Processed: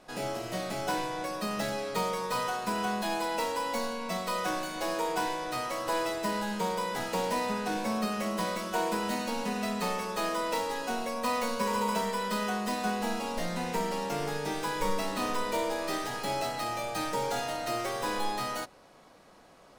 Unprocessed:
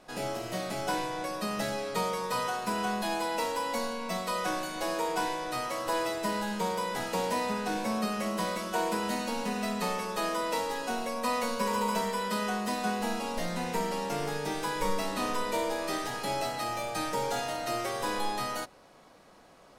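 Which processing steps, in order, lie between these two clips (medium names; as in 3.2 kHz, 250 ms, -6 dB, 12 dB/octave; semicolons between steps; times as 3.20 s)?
tracing distortion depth 0.041 ms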